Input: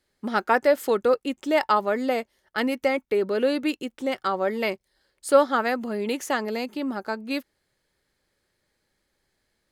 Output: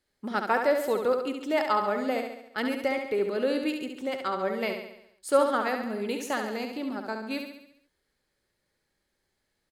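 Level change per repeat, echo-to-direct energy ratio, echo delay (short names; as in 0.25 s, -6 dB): -5.5 dB, -4.5 dB, 69 ms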